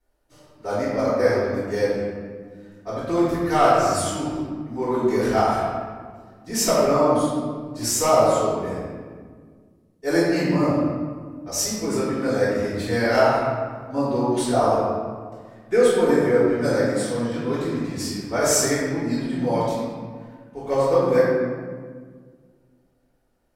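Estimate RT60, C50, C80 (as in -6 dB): 1.7 s, -2.5 dB, -0.5 dB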